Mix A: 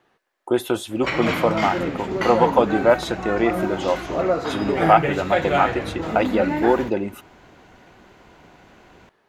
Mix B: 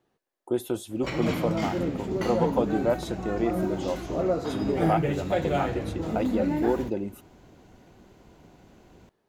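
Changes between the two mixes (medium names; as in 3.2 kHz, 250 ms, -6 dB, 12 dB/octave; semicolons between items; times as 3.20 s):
speech -3.5 dB; master: add peaking EQ 1.7 kHz -12 dB 2.9 oct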